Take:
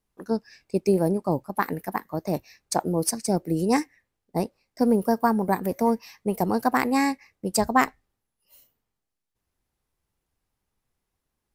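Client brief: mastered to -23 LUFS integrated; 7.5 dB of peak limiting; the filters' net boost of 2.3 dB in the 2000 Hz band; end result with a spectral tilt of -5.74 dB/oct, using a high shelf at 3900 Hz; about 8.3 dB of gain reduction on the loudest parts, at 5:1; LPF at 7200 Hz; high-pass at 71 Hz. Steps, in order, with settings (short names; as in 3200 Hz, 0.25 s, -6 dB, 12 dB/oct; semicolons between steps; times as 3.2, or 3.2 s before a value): HPF 71 Hz; LPF 7200 Hz; bell 2000 Hz +3.5 dB; high shelf 3900 Hz -3.5 dB; compressor 5:1, threshold -23 dBFS; gain +9.5 dB; limiter -10.5 dBFS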